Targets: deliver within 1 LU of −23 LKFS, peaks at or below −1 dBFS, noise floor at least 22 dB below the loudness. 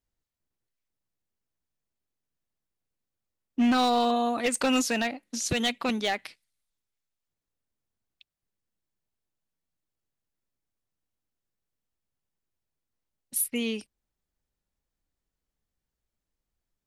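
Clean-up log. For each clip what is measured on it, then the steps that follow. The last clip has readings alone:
share of clipped samples 0.4%; peaks flattened at −19.0 dBFS; integrated loudness −27.0 LKFS; sample peak −19.0 dBFS; target loudness −23.0 LKFS
→ clipped peaks rebuilt −19 dBFS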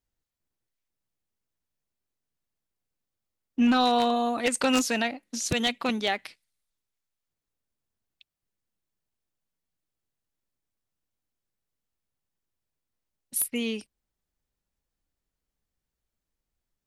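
share of clipped samples 0.0%; integrated loudness −26.0 LKFS; sample peak −10.0 dBFS; target loudness −23.0 LKFS
→ level +3 dB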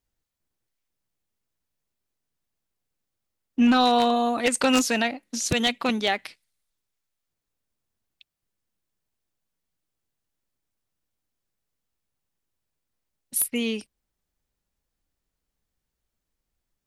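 integrated loudness −23.0 LKFS; sample peak −7.0 dBFS; background noise floor −83 dBFS

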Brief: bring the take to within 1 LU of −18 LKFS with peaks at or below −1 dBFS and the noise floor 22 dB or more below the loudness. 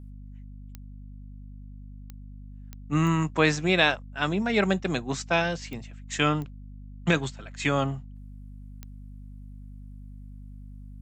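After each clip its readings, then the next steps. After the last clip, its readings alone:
number of clicks 7; mains hum 50 Hz; hum harmonics up to 250 Hz; level of the hum −41 dBFS; integrated loudness −26.0 LKFS; sample peak −6.5 dBFS; target loudness −18.0 LKFS
→ click removal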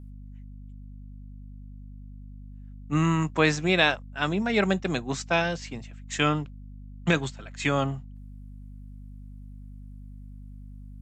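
number of clicks 0; mains hum 50 Hz; hum harmonics up to 250 Hz; level of the hum −41 dBFS
→ mains-hum notches 50/100/150/200/250 Hz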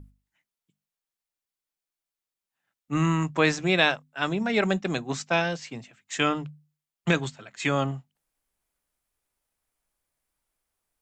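mains hum none found; integrated loudness −26.0 LKFS; sample peak −6.5 dBFS; target loudness −18.0 LKFS
→ level +8 dB
brickwall limiter −1 dBFS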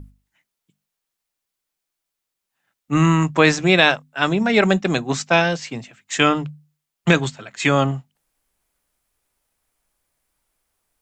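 integrated loudness −18.5 LKFS; sample peak −1.0 dBFS; background noise floor −82 dBFS

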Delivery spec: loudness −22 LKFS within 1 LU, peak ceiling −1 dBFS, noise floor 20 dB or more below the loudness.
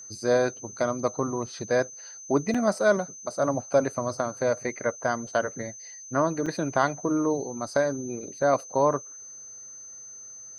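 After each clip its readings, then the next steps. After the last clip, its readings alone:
number of dropouts 2; longest dropout 5.1 ms; interfering tone 6,200 Hz; level of the tone −41 dBFS; integrated loudness −27.0 LKFS; sample peak −7.5 dBFS; target loudness −22.0 LKFS
→ repair the gap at 0:02.54/0:06.46, 5.1 ms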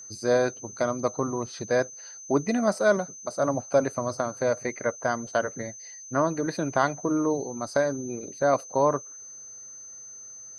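number of dropouts 0; interfering tone 6,200 Hz; level of the tone −41 dBFS
→ notch filter 6,200 Hz, Q 30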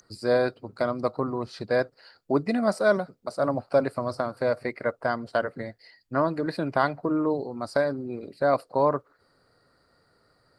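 interfering tone none found; integrated loudness −27.0 LKFS; sample peak −7.5 dBFS; target loudness −22.0 LKFS
→ level +5 dB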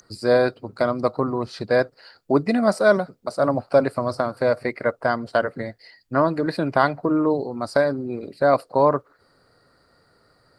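integrated loudness −22.0 LKFS; sample peak −2.5 dBFS; background noise floor −61 dBFS

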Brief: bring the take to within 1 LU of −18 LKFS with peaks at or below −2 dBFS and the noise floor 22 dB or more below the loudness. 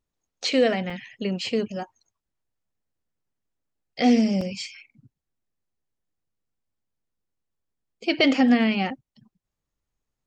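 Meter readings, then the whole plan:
number of dropouts 2; longest dropout 3.7 ms; integrated loudness −23.0 LKFS; sample peak −8.5 dBFS; target loudness −18.0 LKFS
→ repair the gap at 0:00.90/0:04.41, 3.7 ms
level +5 dB

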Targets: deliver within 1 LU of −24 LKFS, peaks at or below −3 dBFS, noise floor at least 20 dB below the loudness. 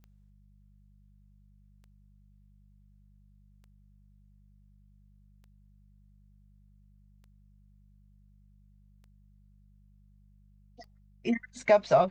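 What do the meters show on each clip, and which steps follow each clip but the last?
number of clicks 7; mains hum 50 Hz; hum harmonics up to 200 Hz; level of the hum −57 dBFS; integrated loudness −27.0 LKFS; sample peak −10.0 dBFS; target loudness −24.0 LKFS
→ click removal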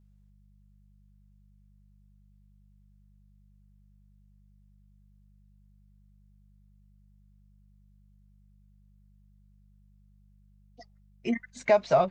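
number of clicks 0; mains hum 50 Hz; hum harmonics up to 200 Hz; level of the hum −57 dBFS
→ hum removal 50 Hz, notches 4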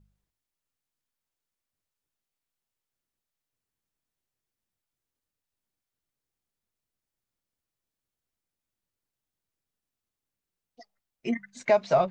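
mains hum none found; integrated loudness −26.5 LKFS; sample peak −10.5 dBFS; target loudness −24.0 LKFS
→ level +2.5 dB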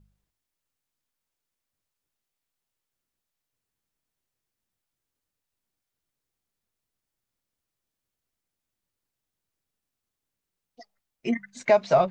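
integrated loudness −24.0 LKFS; sample peak −8.0 dBFS; background noise floor −86 dBFS

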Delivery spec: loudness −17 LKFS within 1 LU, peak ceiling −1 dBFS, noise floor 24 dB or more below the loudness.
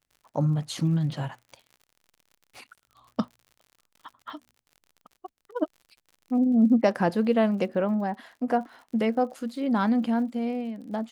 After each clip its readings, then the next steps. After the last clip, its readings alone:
crackle rate 61 per second; integrated loudness −26.5 LKFS; sample peak −9.5 dBFS; target loudness −17.0 LKFS
→ click removal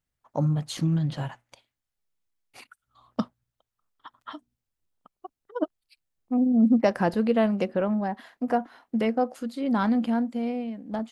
crackle rate 0.27 per second; integrated loudness −26.5 LKFS; sample peak −9.5 dBFS; target loudness −17.0 LKFS
→ level +9.5 dB
brickwall limiter −1 dBFS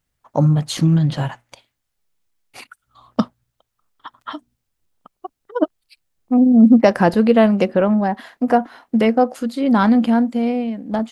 integrated loudness −17.0 LKFS; sample peak −1.0 dBFS; background noise floor −76 dBFS

